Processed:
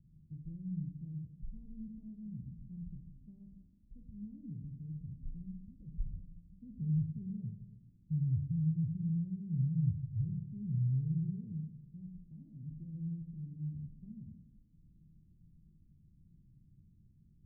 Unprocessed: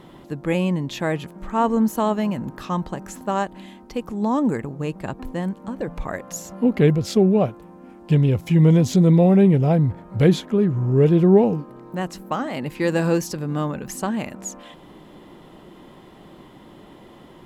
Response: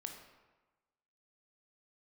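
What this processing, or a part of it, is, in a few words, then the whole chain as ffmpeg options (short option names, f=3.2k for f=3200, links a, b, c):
club heard from the street: -filter_complex "[0:a]alimiter=limit=-14dB:level=0:latency=1,lowpass=f=130:w=0.5412,lowpass=f=130:w=1.3066[a];[1:a]atrim=start_sample=2205[b];[a][b]afir=irnorm=-1:irlink=0,volume=-3dB"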